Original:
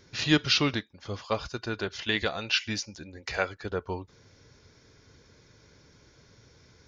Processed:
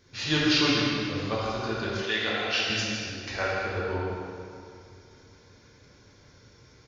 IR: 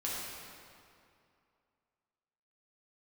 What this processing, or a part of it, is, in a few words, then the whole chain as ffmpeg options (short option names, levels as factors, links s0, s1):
cave: -filter_complex "[0:a]aecho=1:1:161:0.398[s0];[1:a]atrim=start_sample=2205[s1];[s0][s1]afir=irnorm=-1:irlink=0,asettb=1/sr,asplit=3[s2][s3][s4];[s2]atrim=end=2.034[s5];[s3]atrim=start=2.03:end=2.7,asetpts=PTS-STARTPTS,afade=t=in:d=0.004:c=qsin,afade=t=out:st=0.666:d=0.004:c=qsin,highpass=f=260:p=1[s6];[s4]atrim=start=2.696[s7];[s5][s6]acrossfade=d=0.004:c1=hsin:c2=qsin[s8];[s8][s7]acrossfade=d=0.004:c1=qsin:c2=hsin,volume=0.794"